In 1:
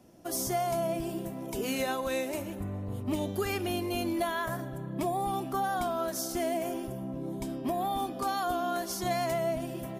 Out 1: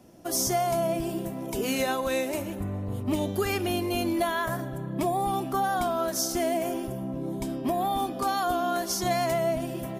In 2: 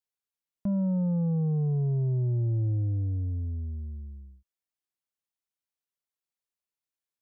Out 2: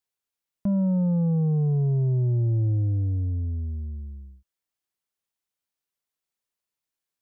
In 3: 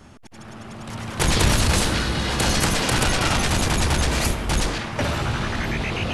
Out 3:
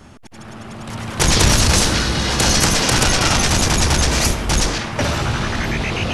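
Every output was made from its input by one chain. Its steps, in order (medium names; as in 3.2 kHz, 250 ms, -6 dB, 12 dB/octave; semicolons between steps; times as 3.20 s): dynamic bell 5.8 kHz, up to +7 dB, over -43 dBFS, Q 2; trim +4 dB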